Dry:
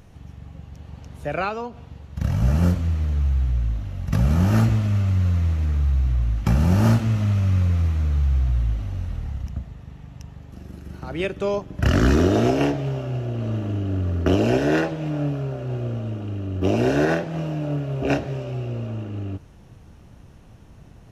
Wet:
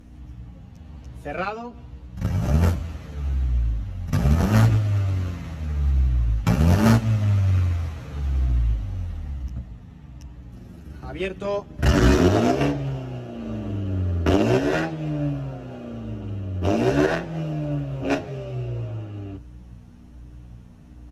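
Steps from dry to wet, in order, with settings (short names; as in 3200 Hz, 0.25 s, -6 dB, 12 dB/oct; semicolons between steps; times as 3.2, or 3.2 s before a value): hum 60 Hz, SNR 18 dB; added harmonics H 3 -12 dB, 5 -30 dB, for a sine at -8 dBFS; endless flanger 9.6 ms -1.2 Hz; gain +7.5 dB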